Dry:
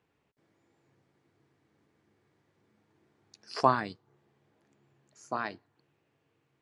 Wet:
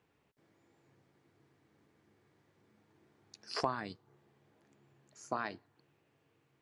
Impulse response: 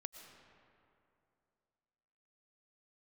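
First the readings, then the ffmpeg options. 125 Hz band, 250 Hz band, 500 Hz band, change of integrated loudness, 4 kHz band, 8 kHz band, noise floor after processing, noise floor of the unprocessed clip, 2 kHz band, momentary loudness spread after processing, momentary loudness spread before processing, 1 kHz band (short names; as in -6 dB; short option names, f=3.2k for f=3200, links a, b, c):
-8.0 dB, -7.0 dB, -7.5 dB, -8.0 dB, -1.0 dB, n/a, -75 dBFS, -76 dBFS, -5.5 dB, 20 LU, 15 LU, -9.5 dB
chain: -af "acompressor=threshold=-33dB:ratio=4,volume=1dB"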